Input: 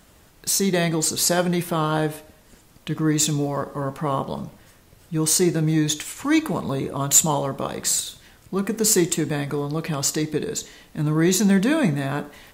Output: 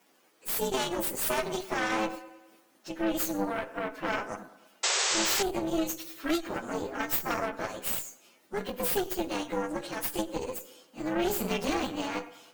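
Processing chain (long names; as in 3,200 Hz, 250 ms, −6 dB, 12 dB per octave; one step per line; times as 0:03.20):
partials spread apart or drawn together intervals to 123%
high-pass filter 260 Hz 24 dB per octave
on a send: bucket-brigade delay 104 ms, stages 2,048, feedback 55%, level −17.5 dB
on the sum: harmonic generator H 6 −8 dB, 8 −7 dB, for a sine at −6 dBFS
sound drawn into the spectrogram noise, 0:04.83–0:05.43, 360–8,200 Hz −21 dBFS
downward compressor, threshold −20 dBFS, peak gain reduction 6 dB
every ending faded ahead of time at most 200 dB per second
level −3.5 dB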